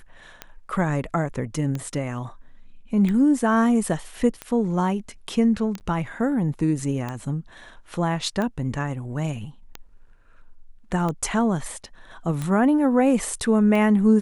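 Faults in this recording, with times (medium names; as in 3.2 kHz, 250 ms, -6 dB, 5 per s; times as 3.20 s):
tick 45 rpm -16 dBFS
5.80–5.81 s: dropout 9.4 ms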